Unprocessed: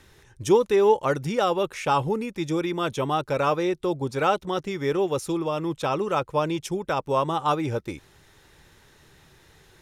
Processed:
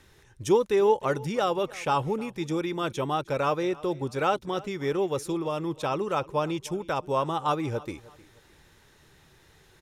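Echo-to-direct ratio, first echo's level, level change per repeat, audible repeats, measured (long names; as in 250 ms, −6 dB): −20.5 dB, −21.0 dB, −9.5 dB, 2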